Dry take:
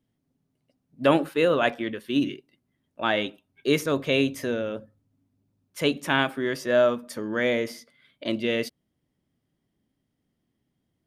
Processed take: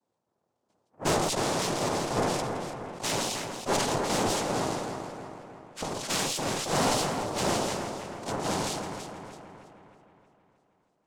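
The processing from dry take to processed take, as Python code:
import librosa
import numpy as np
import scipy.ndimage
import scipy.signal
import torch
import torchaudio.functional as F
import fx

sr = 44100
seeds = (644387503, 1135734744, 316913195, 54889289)

p1 = fx.schmitt(x, sr, flips_db=-33.0, at=(1.21, 1.99))
p2 = fx.over_compress(p1, sr, threshold_db=-27.0, ratio=-0.5, at=(4.5, 5.97), fade=0.02)
p3 = fx.noise_vocoder(p2, sr, seeds[0], bands=2)
p4 = fx.tube_stage(p3, sr, drive_db=18.0, bias=0.65)
p5 = p4 + fx.echo_split(p4, sr, split_hz=2600.0, low_ms=314, high_ms=166, feedback_pct=52, wet_db=-7.0, dry=0)
p6 = fx.sustainer(p5, sr, db_per_s=26.0)
y = p6 * librosa.db_to_amplitude(-2.0)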